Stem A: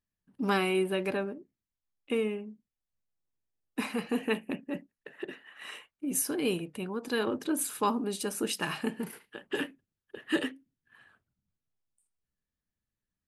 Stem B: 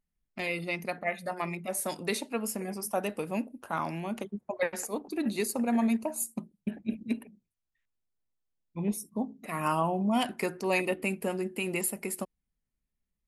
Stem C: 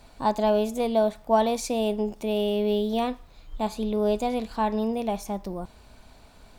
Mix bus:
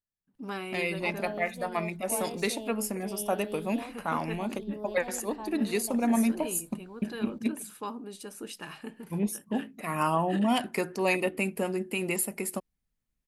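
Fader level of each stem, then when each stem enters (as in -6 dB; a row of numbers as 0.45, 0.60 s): -9.0, +1.5, -16.0 dB; 0.00, 0.35, 0.80 s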